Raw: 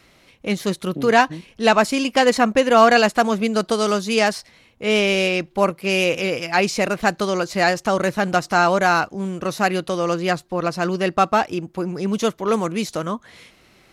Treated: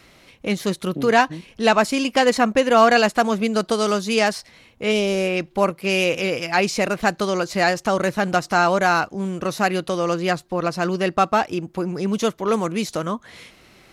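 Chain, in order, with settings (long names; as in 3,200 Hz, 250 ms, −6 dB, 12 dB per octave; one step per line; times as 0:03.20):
0:04.91–0:05.36: parametric band 1,200 Hz → 5,400 Hz −10.5 dB 1.4 octaves
in parallel at −2.5 dB: downward compressor, threshold −30 dBFS, peak gain reduction 20.5 dB
on the sum: level −2 dB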